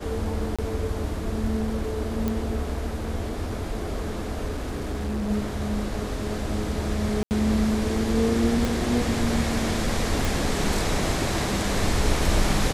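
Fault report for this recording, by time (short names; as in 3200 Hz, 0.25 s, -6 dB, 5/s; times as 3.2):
0.56–0.59 gap 26 ms
2.28 pop -13 dBFS
4.46–5.31 clipped -24.5 dBFS
7.23–7.31 gap 79 ms
8.65 pop
10.25 pop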